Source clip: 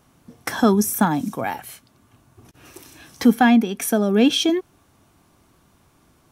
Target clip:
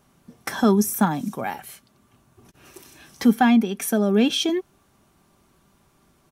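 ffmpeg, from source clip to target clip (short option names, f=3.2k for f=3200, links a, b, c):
-af "aecho=1:1:5.1:0.35,volume=-3dB"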